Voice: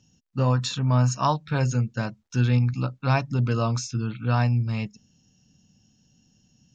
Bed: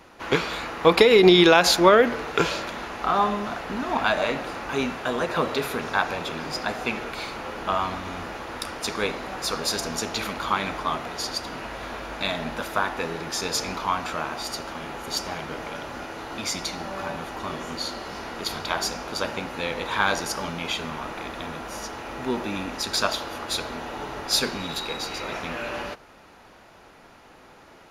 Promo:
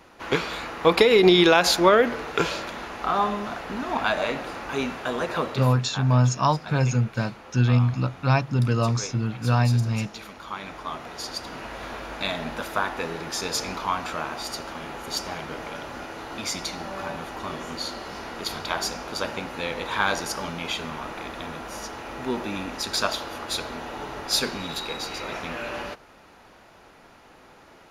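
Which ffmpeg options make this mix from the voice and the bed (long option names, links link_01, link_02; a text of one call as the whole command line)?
ffmpeg -i stem1.wav -i stem2.wav -filter_complex "[0:a]adelay=5200,volume=1.5dB[link_01];[1:a]volume=9dB,afade=type=out:start_time=5.35:duration=0.4:silence=0.316228,afade=type=in:start_time=10.44:duration=1.39:silence=0.298538[link_02];[link_01][link_02]amix=inputs=2:normalize=0" out.wav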